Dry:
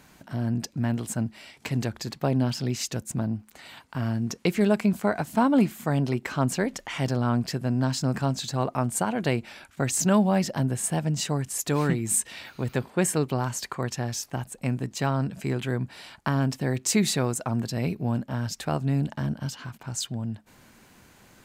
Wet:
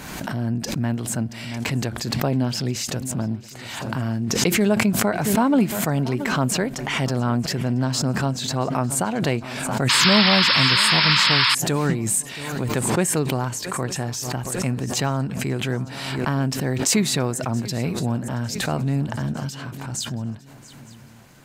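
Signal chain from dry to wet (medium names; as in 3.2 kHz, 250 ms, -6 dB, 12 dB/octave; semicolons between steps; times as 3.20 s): shuffle delay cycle 902 ms, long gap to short 3:1, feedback 40%, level -19 dB; painted sound noise, 9.89–11.55 s, 870–5400 Hz -20 dBFS; swell ahead of each attack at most 36 dB/s; trim +2 dB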